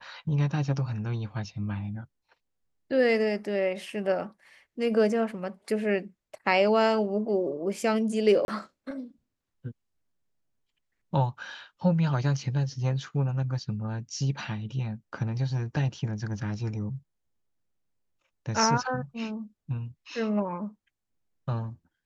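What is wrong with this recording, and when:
8.45–8.48 gap 31 ms

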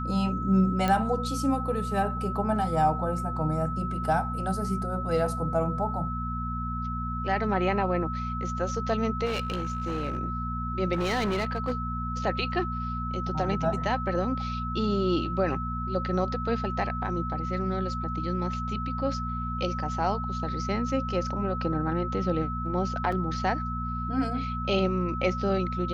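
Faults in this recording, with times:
hum 60 Hz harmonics 4 -33 dBFS
tone 1300 Hz -33 dBFS
0.88 pop -13 dBFS
9.25–10.18 clipped -25 dBFS
10.93–11.73 clipped -23 dBFS
23.12 gap 3.8 ms

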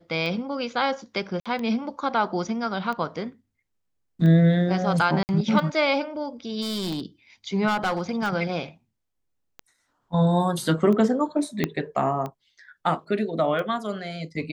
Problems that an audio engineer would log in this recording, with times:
tick 45 rpm -20 dBFS
1.4–1.46 gap 56 ms
5.23–5.29 gap 59 ms
6.61–7.01 clipped -25.5 dBFS
7.67–8.33 clipped -20 dBFS
11.64 pop -9 dBFS

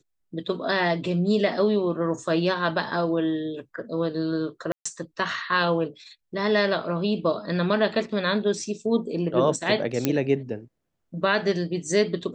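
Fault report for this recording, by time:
4.72–4.86 gap 0.135 s
10.05 pop -7 dBFS

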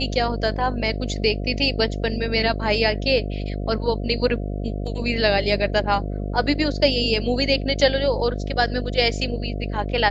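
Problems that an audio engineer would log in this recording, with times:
buzz 50 Hz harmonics 14 -27 dBFS

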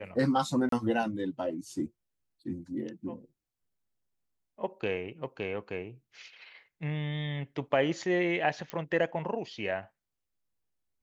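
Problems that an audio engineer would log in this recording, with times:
0.69–0.72 gap 33 ms
8.7 pop -21 dBFS

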